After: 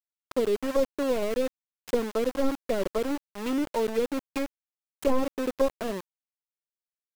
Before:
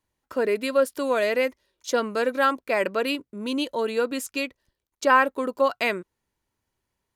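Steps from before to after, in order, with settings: tracing distortion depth 0.5 ms; treble ducked by the level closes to 480 Hz, closed at -20.5 dBFS; sample gate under -31 dBFS

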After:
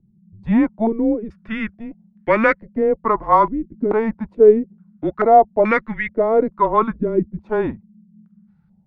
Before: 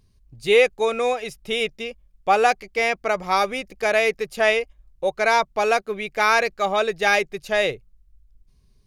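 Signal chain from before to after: frequency shift -220 Hz; stepped low-pass 2.3 Hz 330–1800 Hz

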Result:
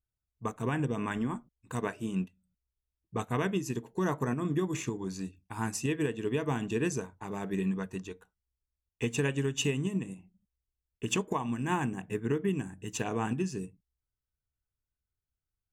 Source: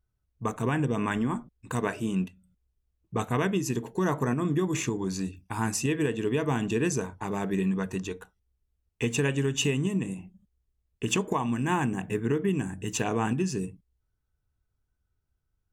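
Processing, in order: upward expander 1.5:1, over -43 dBFS; gain -2.5 dB

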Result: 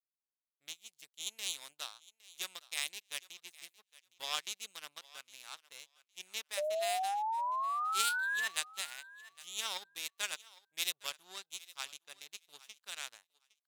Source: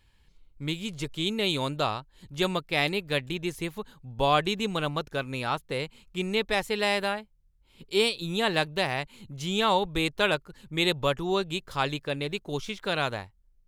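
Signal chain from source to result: power-law curve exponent 2; differentiator; painted sound rise, 6.57–8.48, 580–1800 Hz -39 dBFS; on a send: thinning echo 0.811 s, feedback 16%, high-pass 420 Hz, level -19.5 dB; on the sum: gain +4.5 dB

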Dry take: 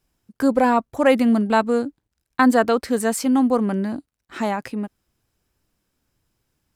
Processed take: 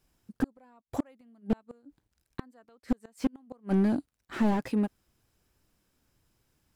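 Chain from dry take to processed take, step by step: flipped gate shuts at -11 dBFS, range -41 dB; slew limiter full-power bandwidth 28 Hz

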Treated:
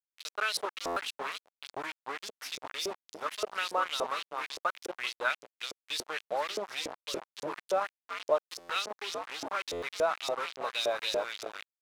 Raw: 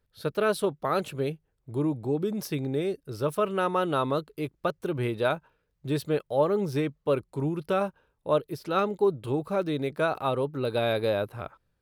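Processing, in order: tilt +3.5 dB/oct; on a send: frequency-shifting echo 0.387 s, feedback 38%, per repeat -120 Hz, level -8 dB; on the sum: bit-crush 5-bit; LFO band-pass saw up 3.5 Hz 440–6000 Hz; stuck buffer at 0.86/8.59/9.72, samples 512, times 8; gain +3 dB

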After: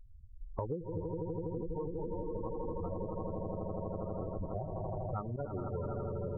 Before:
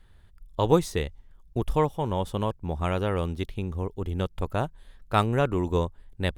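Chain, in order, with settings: 3.06–4.22 elliptic band-pass 640–2700 Hz; swelling echo 82 ms, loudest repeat 8, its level -6.5 dB; spectral gate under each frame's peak -10 dB strong; thinning echo 0.435 s, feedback 50%, high-pass 1200 Hz, level -12 dB; 5.36–5.85 expander -18 dBFS; compressor 16:1, threshold -35 dBFS, peak gain reduction 20.5 dB; gain +1 dB

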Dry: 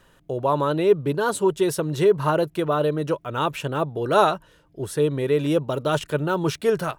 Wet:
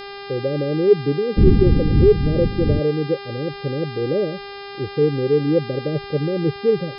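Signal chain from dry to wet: 1.36–2.78 wind noise 160 Hz -16 dBFS; steep low-pass 560 Hz 96 dB/oct; spectral gate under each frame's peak -20 dB strong; buzz 400 Hz, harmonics 13, -38 dBFS -4 dB/oct; maximiser +4.5 dB; gain -1 dB

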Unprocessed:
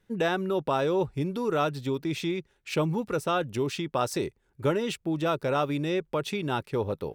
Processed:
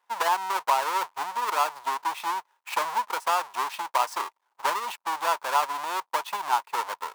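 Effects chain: half-waves squared off; resonant high-pass 950 Hz, resonance Q 6.4; transient shaper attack +3 dB, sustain -1 dB; gain -6.5 dB

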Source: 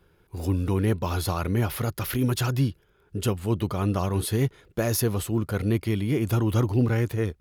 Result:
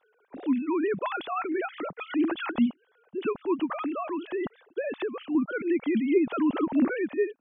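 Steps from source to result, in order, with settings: sine-wave speech; 3.65–5.35 compressor, threshold -25 dBFS, peak gain reduction 7.5 dB; gain -2.5 dB

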